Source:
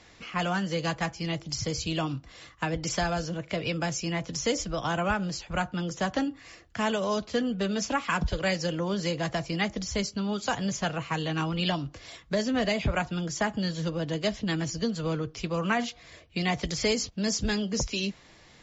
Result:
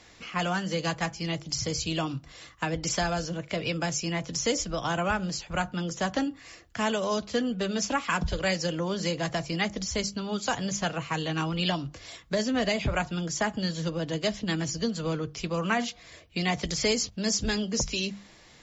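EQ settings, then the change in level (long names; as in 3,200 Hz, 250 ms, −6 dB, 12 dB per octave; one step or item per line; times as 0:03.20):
high-shelf EQ 6,900 Hz +6.5 dB
mains-hum notches 50/100/150/200 Hz
0.0 dB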